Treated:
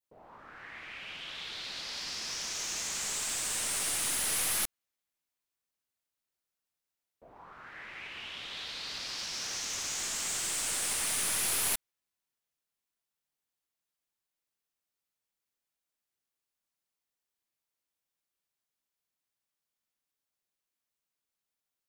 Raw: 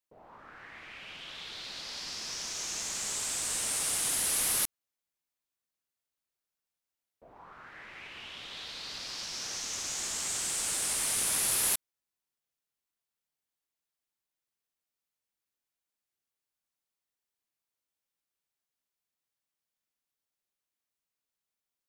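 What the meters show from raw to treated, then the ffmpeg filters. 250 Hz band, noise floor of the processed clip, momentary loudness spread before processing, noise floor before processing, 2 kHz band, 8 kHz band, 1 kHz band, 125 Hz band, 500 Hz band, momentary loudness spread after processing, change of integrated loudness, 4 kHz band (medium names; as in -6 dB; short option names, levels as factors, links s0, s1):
-0.5 dB, under -85 dBFS, 19 LU, under -85 dBFS, +2.0 dB, -1.5 dB, +0.5 dB, -0.5 dB, -0.5 dB, 15 LU, -1.5 dB, +0.5 dB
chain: -af "aeval=exprs='clip(val(0),-1,0.0224)':c=same,adynamicequalizer=threshold=0.00282:dfrequency=2200:dqfactor=0.78:tfrequency=2200:tqfactor=0.78:attack=5:release=100:ratio=0.375:range=1.5:mode=boostabove:tftype=bell"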